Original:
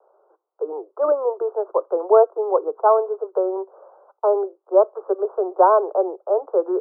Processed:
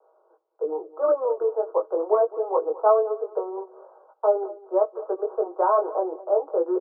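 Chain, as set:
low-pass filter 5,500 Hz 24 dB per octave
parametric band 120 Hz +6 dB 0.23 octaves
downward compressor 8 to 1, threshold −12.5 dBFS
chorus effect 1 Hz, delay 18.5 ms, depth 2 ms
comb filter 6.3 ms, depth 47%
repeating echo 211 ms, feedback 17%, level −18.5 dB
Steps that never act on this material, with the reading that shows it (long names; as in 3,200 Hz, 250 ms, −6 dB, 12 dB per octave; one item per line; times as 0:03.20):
low-pass filter 5,500 Hz: nothing at its input above 1,400 Hz
parametric band 120 Hz: nothing at its input below 320 Hz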